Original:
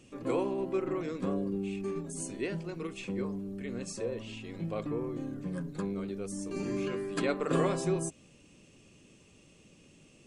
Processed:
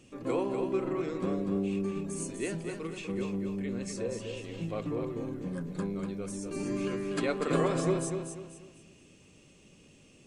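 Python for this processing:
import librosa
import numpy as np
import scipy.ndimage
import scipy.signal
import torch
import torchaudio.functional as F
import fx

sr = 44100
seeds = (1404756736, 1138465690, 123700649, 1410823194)

y = fx.echo_feedback(x, sr, ms=244, feedback_pct=34, wet_db=-6)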